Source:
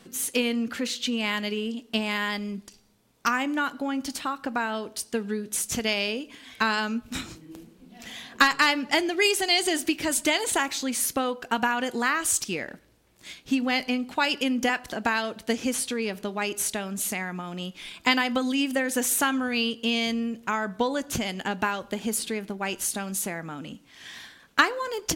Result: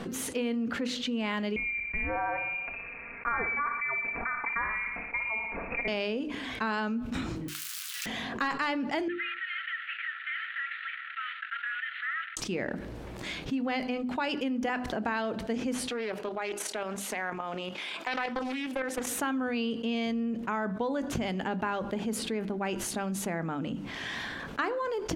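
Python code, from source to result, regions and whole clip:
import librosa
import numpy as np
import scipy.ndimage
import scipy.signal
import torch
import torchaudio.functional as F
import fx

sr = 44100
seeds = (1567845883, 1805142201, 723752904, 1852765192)

y = fx.chain(x, sr, fx.freq_invert(carrier_hz=2600),
    fx.comb(ms=4.3, depth=0.57),
    fx.echo_feedback(ms=60, feedback_pct=54, wet_db=-11.5), at=(1.56, 5.88))
y = fx.chain(y, sr, fx.crossing_spikes(level_db=-35.5),
    fx.ellip_highpass(hz=1300.0, order=4, stop_db=60),
    fx.high_shelf(hz=3000.0, db=11.5), at=(7.48, 8.06))
y = fx.chain(y, sr, fx.cvsd(bps=16000),
    fx.cheby_ripple_highpass(hz=1300.0, ripple_db=9),
    fx.tilt_eq(slope=2.5), at=(9.08, 12.37))
y = fx.chain(y, sr, fx.highpass(hz=470.0, slope=12),
    fx.level_steps(step_db=9),
    fx.doppler_dist(depth_ms=0.42), at=(15.89, 19.07))
y = fx.lowpass(y, sr, hz=1100.0, slope=6)
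y = fx.hum_notches(y, sr, base_hz=50, count=7)
y = fx.env_flatten(y, sr, amount_pct=70)
y = y * 10.0 ** (-8.5 / 20.0)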